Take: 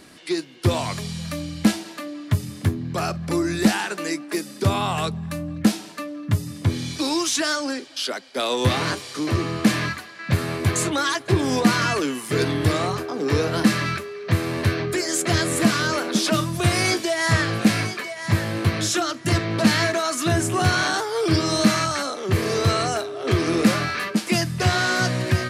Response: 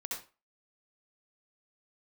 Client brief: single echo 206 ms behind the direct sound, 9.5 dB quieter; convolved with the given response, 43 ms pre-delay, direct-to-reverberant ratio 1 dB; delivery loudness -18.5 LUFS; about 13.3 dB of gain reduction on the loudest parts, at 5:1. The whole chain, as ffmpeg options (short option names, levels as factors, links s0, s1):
-filter_complex "[0:a]acompressor=threshold=0.0447:ratio=5,aecho=1:1:206:0.335,asplit=2[s0][s1];[1:a]atrim=start_sample=2205,adelay=43[s2];[s1][s2]afir=irnorm=-1:irlink=0,volume=0.794[s3];[s0][s3]amix=inputs=2:normalize=0,volume=2.82"